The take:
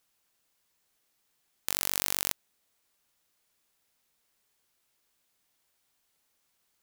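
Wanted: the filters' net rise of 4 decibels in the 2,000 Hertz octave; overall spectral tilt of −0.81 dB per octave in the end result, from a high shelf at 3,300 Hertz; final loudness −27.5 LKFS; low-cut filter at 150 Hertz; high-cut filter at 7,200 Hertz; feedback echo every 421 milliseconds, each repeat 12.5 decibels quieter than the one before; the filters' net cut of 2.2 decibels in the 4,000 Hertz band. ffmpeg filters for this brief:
ffmpeg -i in.wav -af "highpass=150,lowpass=7200,equalizer=frequency=2000:width_type=o:gain=5.5,highshelf=frequency=3300:gain=5,equalizer=frequency=4000:width_type=o:gain=-8,aecho=1:1:421|842|1263:0.237|0.0569|0.0137,volume=7dB" out.wav

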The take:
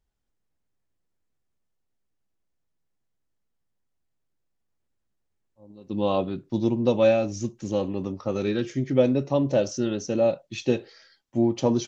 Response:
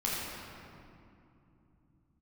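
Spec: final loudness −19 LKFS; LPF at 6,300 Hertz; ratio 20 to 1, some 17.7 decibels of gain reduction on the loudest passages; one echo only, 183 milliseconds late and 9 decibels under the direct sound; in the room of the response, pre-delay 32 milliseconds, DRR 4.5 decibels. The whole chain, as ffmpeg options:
-filter_complex "[0:a]lowpass=6300,acompressor=threshold=-32dB:ratio=20,aecho=1:1:183:0.355,asplit=2[link_01][link_02];[1:a]atrim=start_sample=2205,adelay=32[link_03];[link_02][link_03]afir=irnorm=-1:irlink=0,volume=-12dB[link_04];[link_01][link_04]amix=inputs=2:normalize=0,volume=17dB"

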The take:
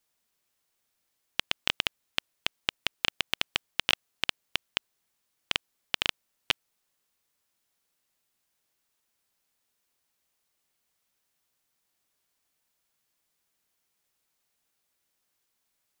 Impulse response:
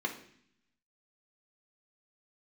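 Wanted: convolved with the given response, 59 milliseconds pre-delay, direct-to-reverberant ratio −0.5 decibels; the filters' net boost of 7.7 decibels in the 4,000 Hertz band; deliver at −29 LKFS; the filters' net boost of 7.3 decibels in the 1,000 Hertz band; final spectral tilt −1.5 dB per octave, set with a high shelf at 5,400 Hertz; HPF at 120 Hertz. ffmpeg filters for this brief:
-filter_complex "[0:a]highpass=120,equalizer=frequency=1000:width_type=o:gain=8.5,equalizer=frequency=4000:width_type=o:gain=7.5,highshelf=frequency=5400:gain=7,asplit=2[link_01][link_02];[1:a]atrim=start_sample=2205,adelay=59[link_03];[link_02][link_03]afir=irnorm=-1:irlink=0,volume=-4.5dB[link_04];[link_01][link_04]amix=inputs=2:normalize=0,volume=-7dB"

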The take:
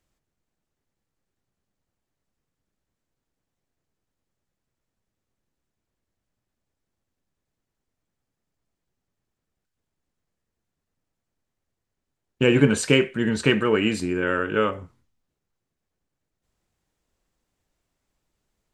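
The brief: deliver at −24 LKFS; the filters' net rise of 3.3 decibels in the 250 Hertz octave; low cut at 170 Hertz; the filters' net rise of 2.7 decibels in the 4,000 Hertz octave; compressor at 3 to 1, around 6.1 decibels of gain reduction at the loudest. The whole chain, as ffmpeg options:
ffmpeg -i in.wav -af "highpass=170,equalizer=frequency=250:width_type=o:gain=5,equalizer=frequency=4000:width_type=o:gain=4.5,acompressor=threshold=-18dB:ratio=3,volume=-1dB" out.wav

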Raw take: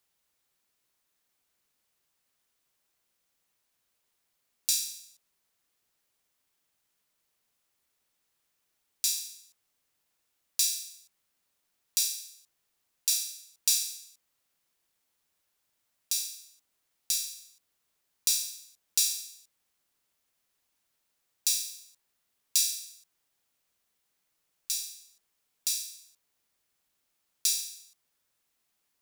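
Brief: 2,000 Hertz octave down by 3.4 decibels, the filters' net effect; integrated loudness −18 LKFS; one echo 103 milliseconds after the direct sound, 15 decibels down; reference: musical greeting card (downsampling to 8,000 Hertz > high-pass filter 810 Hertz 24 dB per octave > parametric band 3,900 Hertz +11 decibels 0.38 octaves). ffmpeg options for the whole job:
ffmpeg -i in.wav -af "equalizer=frequency=2000:width_type=o:gain=-7,aecho=1:1:103:0.178,aresample=8000,aresample=44100,highpass=frequency=810:width=0.5412,highpass=frequency=810:width=1.3066,equalizer=frequency=3900:width_type=o:width=0.38:gain=11,volume=22.5dB" out.wav

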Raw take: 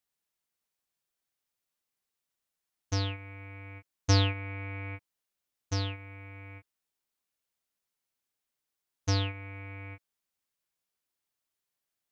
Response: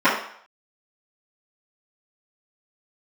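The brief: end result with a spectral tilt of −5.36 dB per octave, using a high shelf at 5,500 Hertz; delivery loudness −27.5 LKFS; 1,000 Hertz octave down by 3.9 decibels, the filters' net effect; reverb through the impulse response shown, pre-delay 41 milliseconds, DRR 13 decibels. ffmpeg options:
-filter_complex "[0:a]equalizer=frequency=1000:width_type=o:gain=-5,highshelf=frequency=5500:gain=-6.5,asplit=2[link_01][link_02];[1:a]atrim=start_sample=2205,adelay=41[link_03];[link_02][link_03]afir=irnorm=-1:irlink=0,volume=-36dB[link_04];[link_01][link_04]amix=inputs=2:normalize=0,volume=6dB"

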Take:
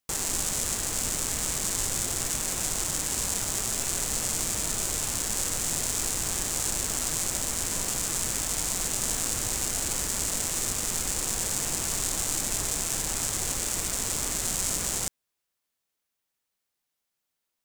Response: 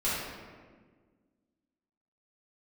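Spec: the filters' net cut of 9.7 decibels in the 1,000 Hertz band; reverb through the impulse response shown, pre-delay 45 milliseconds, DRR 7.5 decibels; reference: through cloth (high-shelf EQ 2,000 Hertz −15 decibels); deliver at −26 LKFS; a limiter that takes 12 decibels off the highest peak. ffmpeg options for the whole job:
-filter_complex "[0:a]equalizer=frequency=1000:width_type=o:gain=-9,alimiter=limit=-21.5dB:level=0:latency=1,asplit=2[link_01][link_02];[1:a]atrim=start_sample=2205,adelay=45[link_03];[link_02][link_03]afir=irnorm=-1:irlink=0,volume=-17dB[link_04];[link_01][link_04]amix=inputs=2:normalize=0,highshelf=frequency=2000:gain=-15,volume=19.5dB"

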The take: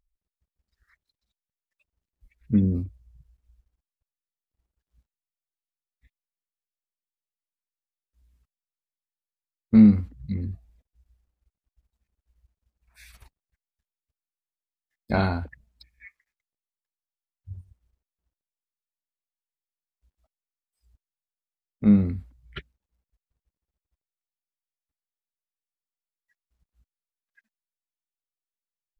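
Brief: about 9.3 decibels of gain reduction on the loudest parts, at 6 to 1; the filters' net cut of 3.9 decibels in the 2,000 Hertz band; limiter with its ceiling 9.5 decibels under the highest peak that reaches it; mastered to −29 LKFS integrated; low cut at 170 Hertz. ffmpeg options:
ffmpeg -i in.wav -af "highpass=170,equalizer=frequency=2000:width_type=o:gain=-6,acompressor=threshold=-21dB:ratio=6,volume=5.5dB,alimiter=limit=-16.5dB:level=0:latency=1" out.wav

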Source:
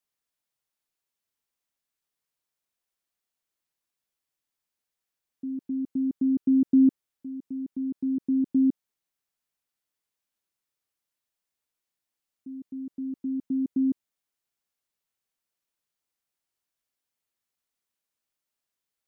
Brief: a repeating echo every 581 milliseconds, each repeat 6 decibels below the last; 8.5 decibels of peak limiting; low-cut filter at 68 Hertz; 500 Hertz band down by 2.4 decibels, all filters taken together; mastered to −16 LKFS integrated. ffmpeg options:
ffmpeg -i in.wav -af "highpass=68,equalizer=frequency=500:width_type=o:gain=-5.5,alimiter=limit=-23dB:level=0:latency=1,aecho=1:1:581|1162|1743|2324|2905|3486:0.501|0.251|0.125|0.0626|0.0313|0.0157,volume=15.5dB" out.wav

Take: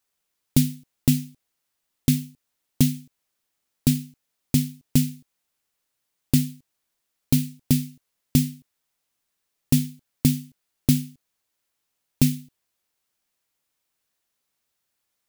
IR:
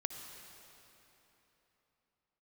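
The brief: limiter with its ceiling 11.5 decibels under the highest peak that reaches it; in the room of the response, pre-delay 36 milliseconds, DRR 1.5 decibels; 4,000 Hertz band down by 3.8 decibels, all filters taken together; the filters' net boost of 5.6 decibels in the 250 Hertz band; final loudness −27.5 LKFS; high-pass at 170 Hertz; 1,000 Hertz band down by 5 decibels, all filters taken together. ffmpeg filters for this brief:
-filter_complex "[0:a]highpass=170,equalizer=frequency=250:width_type=o:gain=7.5,equalizer=frequency=1000:width_type=o:gain=-7.5,equalizer=frequency=4000:width_type=o:gain=-4.5,alimiter=limit=-14dB:level=0:latency=1,asplit=2[link_01][link_02];[1:a]atrim=start_sample=2205,adelay=36[link_03];[link_02][link_03]afir=irnorm=-1:irlink=0,volume=-1.5dB[link_04];[link_01][link_04]amix=inputs=2:normalize=0,volume=-3dB"

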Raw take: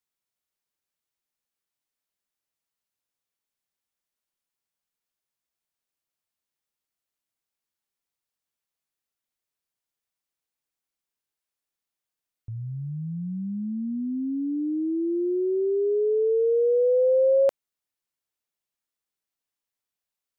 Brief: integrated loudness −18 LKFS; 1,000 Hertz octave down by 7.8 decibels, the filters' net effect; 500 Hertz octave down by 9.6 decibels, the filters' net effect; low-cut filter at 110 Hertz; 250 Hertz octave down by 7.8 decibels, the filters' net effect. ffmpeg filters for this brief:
ffmpeg -i in.wav -af "highpass=110,equalizer=frequency=250:width_type=o:gain=-7,equalizer=frequency=500:width_type=o:gain=-7.5,equalizer=frequency=1000:width_type=o:gain=-7,volume=16dB" out.wav

